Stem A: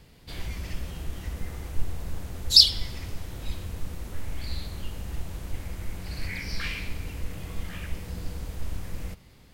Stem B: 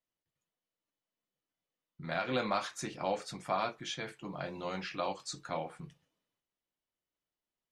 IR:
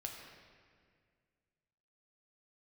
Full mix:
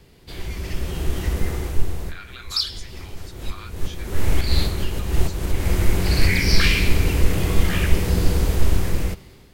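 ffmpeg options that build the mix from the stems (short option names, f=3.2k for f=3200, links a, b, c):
-filter_complex "[0:a]equalizer=f=380:w=4.3:g=8.5,dynaudnorm=f=370:g=5:m=15dB,volume=2dB[a];[1:a]highpass=f=1.3k:w=0.5412,highpass=f=1.3k:w=1.3066,volume=-1.5dB,asplit=2[b][c];[c]apad=whole_len=420638[d];[a][d]sidechaincompress=threshold=-47dB:ratio=4:attack=7.5:release=277[e];[e][b]amix=inputs=2:normalize=0,acrossover=split=360|3000[f][g][h];[g]acompressor=threshold=-27dB:ratio=2[i];[f][i][h]amix=inputs=3:normalize=0"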